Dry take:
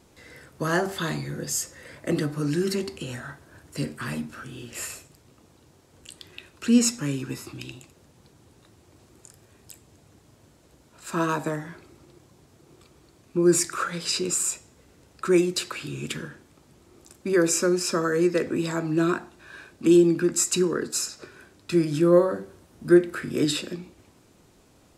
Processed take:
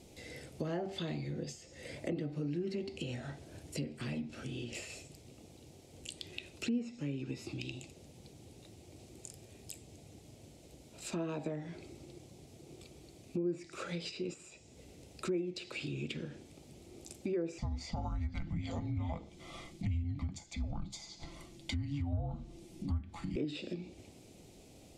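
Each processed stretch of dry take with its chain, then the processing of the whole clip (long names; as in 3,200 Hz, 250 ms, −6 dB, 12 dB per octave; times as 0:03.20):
0:17.58–0:23.36: frequency shifter −430 Hz + comb filter 5.9 ms, depth 36%
whole clip: flat-topped bell 1,300 Hz −13 dB 1.1 octaves; downward compressor 3 to 1, threshold −39 dBFS; treble cut that deepens with the level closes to 1,700 Hz, closed at −32 dBFS; level +1 dB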